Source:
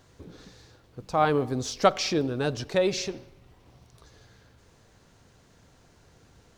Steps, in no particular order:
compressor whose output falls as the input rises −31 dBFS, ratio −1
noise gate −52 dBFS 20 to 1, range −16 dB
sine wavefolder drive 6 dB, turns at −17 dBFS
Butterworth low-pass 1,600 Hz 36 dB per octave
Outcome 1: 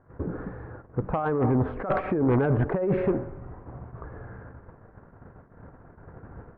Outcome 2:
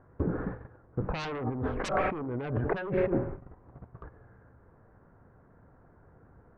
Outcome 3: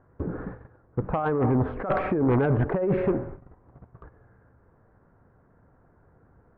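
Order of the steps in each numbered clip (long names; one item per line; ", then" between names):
compressor whose output falls as the input rises, then noise gate, then Butterworth low-pass, then sine wavefolder
Butterworth low-pass, then noise gate, then sine wavefolder, then compressor whose output falls as the input rises
Butterworth low-pass, then noise gate, then compressor whose output falls as the input rises, then sine wavefolder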